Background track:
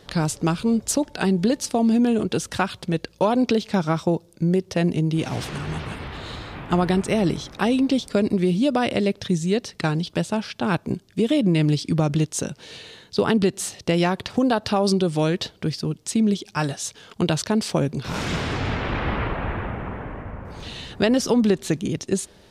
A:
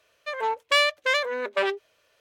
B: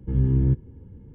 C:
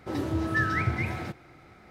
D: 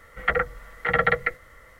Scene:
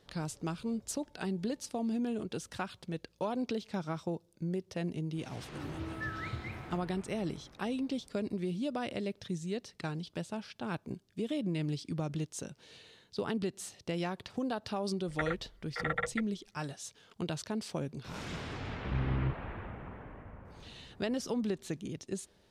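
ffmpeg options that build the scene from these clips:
ffmpeg -i bed.wav -i cue0.wav -i cue1.wav -i cue2.wav -i cue3.wav -filter_complex "[0:a]volume=-15dB[link_01];[4:a]afwtdn=0.0282[link_02];[3:a]atrim=end=1.9,asetpts=PTS-STARTPTS,volume=-13dB,afade=type=in:duration=0.004:curve=hsin,afade=type=out:start_time=1.896:duration=0.004:curve=hsin,adelay=5460[link_03];[link_02]atrim=end=1.79,asetpts=PTS-STARTPTS,volume=-13dB,afade=type=in:duration=0.004:curve=hsin,afade=type=out:start_time=1.786:duration=0.004:curve=hsin,adelay=14910[link_04];[2:a]atrim=end=1.14,asetpts=PTS-STARTPTS,volume=-12.5dB,afade=type=in:duration=0.004:curve=hsin,afade=type=out:start_time=1.136:duration=0.004:curve=hsin,adelay=18770[link_05];[link_01][link_03][link_04][link_05]amix=inputs=4:normalize=0" out.wav

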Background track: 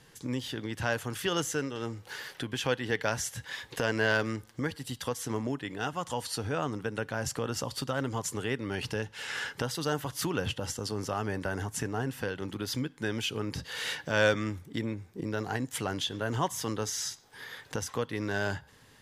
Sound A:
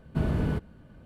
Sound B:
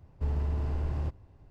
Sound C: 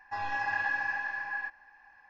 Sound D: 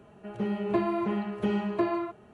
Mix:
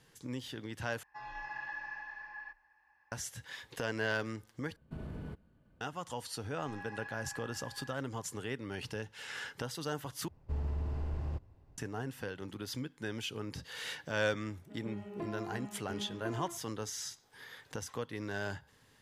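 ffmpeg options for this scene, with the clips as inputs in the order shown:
ffmpeg -i bed.wav -i cue0.wav -i cue1.wav -i cue2.wav -i cue3.wav -filter_complex "[3:a]asplit=2[link_01][link_02];[0:a]volume=-7dB[link_03];[link_01]afreqshift=26[link_04];[1:a]acompressor=threshold=-29dB:ratio=6:attack=95:release=47:knee=1:detection=rms[link_05];[link_03]asplit=4[link_06][link_07][link_08][link_09];[link_06]atrim=end=1.034[link_10];[link_04]atrim=end=2.09,asetpts=PTS-STARTPTS,volume=-11.5dB[link_11];[link_07]atrim=start=3.116:end=4.764[link_12];[link_05]atrim=end=1.05,asetpts=PTS-STARTPTS,volume=-15dB[link_13];[link_08]atrim=start=5.806:end=10.284[link_14];[2:a]atrim=end=1.5,asetpts=PTS-STARTPTS,volume=-5.5dB[link_15];[link_09]atrim=start=11.776[link_16];[link_02]atrim=end=2.09,asetpts=PTS-STARTPTS,volume=-15.5dB,afade=type=in:duration=0.004:curve=hsin,afade=type=out:start_time=2.086:duration=0.004:curve=hsin,adelay=6460[link_17];[4:a]atrim=end=2.33,asetpts=PTS-STARTPTS,volume=-15dB,afade=type=in:duration=0.004:curve=hsin,afade=type=out:start_time=2.326:duration=0.004:curve=hsin,adelay=14460[link_18];[link_10][link_11]acrossfade=duration=0.004:curve1=hsin:curve2=hsin[link_19];[link_19][link_12]acrossfade=duration=0.004:curve1=hsin:curve2=hsin[link_20];[link_20][link_13]acrossfade=duration=0.004:curve1=hsin:curve2=hsin[link_21];[link_21][link_14]acrossfade=duration=0.004:curve1=hsin:curve2=hsin[link_22];[link_22][link_15]acrossfade=duration=0.004:curve1=hsin:curve2=hsin[link_23];[link_23][link_16]acrossfade=duration=0.004:curve1=hsin:curve2=hsin[link_24];[link_24][link_17][link_18]amix=inputs=3:normalize=0" out.wav

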